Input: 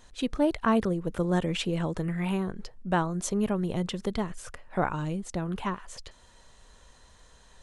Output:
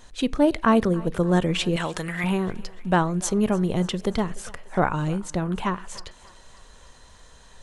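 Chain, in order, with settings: 1.76–2.24 tilt shelf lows -9.5 dB, about 750 Hz; thinning echo 0.294 s, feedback 60%, high-pass 370 Hz, level -20.5 dB; on a send at -22 dB: reverb RT60 0.40 s, pre-delay 3 ms; on the sum: gain +5.5 dB

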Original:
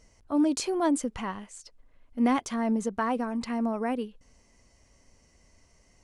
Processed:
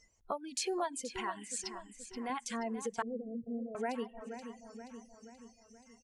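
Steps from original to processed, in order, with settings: plate-style reverb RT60 2.7 s, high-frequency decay 0.75×, DRR 18 dB; compressor 4:1, threshold -41 dBFS, peak gain reduction 17.5 dB; spectral noise reduction 21 dB; 0.84–2.3 low shelf 240 Hz -11 dB; feedback echo 0.478 s, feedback 52%, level -11 dB; dynamic EQ 190 Hz, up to -7 dB, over -55 dBFS, Q 1; 3.02–3.75 steep low-pass 600 Hz 72 dB/oct; reverb removal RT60 0.52 s; gain +8.5 dB

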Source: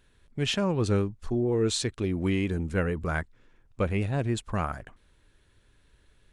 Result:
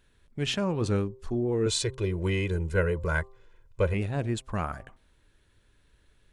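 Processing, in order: de-hum 130.5 Hz, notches 9; 1.66–3.94 comb 2 ms, depth 92%; gain -1.5 dB

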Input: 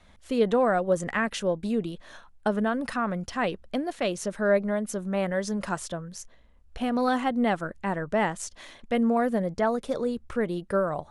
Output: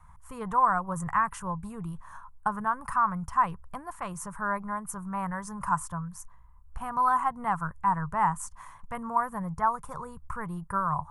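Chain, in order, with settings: EQ curve 160 Hz 0 dB, 240 Hz -22 dB, 610 Hz -21 dB, 1000 Hz +8 dB, 1600 Hz -8 dB, 3800 Hz -27 dB, 8700 Hz -4 dB, 12000 Hz -1 dB; gain +4.5 dB

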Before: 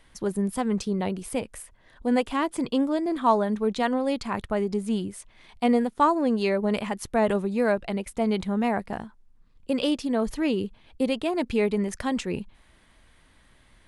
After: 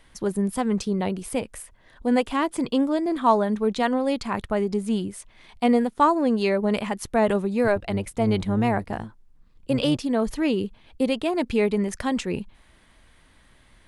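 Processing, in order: 7.64–9.97 octaver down 1 oct, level -4 dB; gain +2 dB

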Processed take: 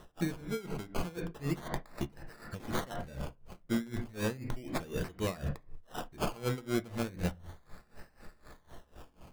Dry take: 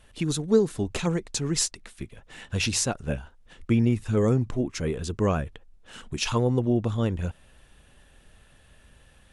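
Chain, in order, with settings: low shelf 340 Hz -5.5 dB; reverse; compressor 6:1, threshold -35 dBFS, peak gain reduction 17 dB; reverse; decimation with a swept rate 19×, swing 60% 0.34 Hz; on a send at -5 dB: air absorption 80 m + reverb RT60 0.40 s, pre-delay 5 ms; on the sum: dB-linear tremolo 4 Hz, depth 20 dB; gain +7 dB

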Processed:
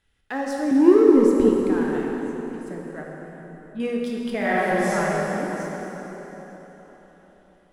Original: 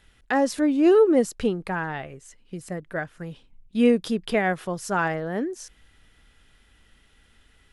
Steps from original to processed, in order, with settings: 0.71–1.49 resonant low shelf 480 Hz +9.5 dB, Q 1.5; 4.38–4.92 reverb throw, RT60 2.3 s, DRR -9 dB; sample leveller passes 1; 2.75–3.8 air absorption 450 m; plate-style reverb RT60 4.2 s, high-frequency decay 0.75×, DRR -2 dB; gain -11 dB

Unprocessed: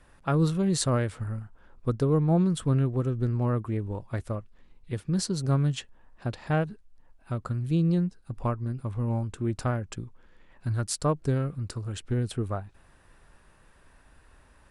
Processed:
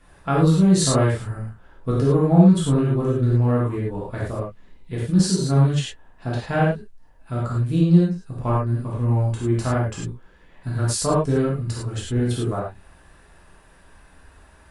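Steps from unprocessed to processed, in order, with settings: non-linear reverb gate 0.13 s flat, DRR -6.5 dB

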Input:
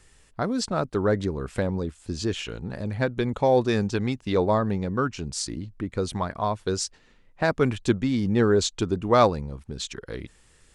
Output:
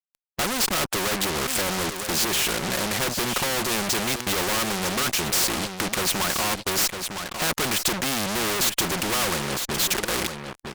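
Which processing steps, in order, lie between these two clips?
tracing distortion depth 0.068 ms; HPF 210 Hz 12 dB/oct; high shelf 6700 Hz +2.5 dB; comb 5.5 ms, depth 44%; dynamic EQ 1200 Hz, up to +6 dB, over -41 dBFS, Q 3.7; in parallel at +0.5 dB: compressor 6:1, threshold -29 dBFS, peak gain reduction 17 dB; on the sum: fuzz box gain 39 dB, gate -40 dBFS; echo 0.957 s -13.5 dB; spectral compressor 2:1

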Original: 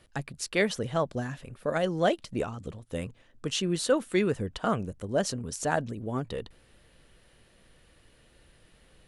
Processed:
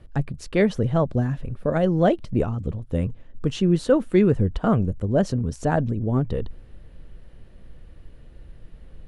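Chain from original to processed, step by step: tilt -3.5 dB/oct; gain +2.5 dB

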